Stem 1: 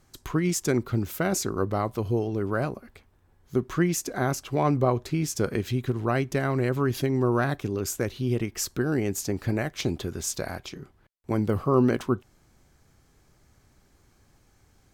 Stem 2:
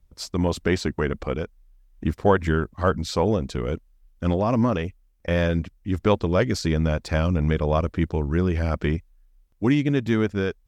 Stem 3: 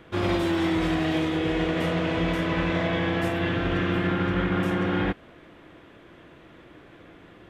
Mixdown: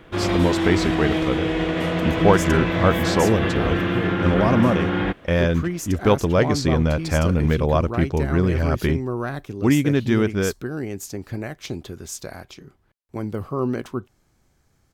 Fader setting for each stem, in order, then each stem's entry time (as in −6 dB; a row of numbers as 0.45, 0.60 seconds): −3.0, +2.5, +2.5 decibels; 1.85, 0.00, 0.00 seconds